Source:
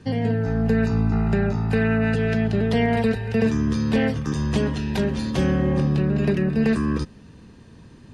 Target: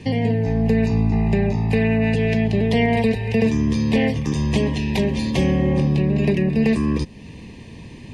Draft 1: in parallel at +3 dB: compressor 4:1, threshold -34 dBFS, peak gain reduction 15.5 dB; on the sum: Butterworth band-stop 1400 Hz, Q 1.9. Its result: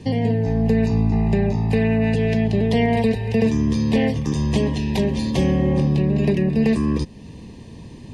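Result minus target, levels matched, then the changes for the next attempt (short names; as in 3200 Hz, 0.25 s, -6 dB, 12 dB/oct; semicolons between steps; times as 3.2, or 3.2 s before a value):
2000 Hz band -3.0 dB
add after compressor: bell 2300 Hz +12.5 dB 1 oct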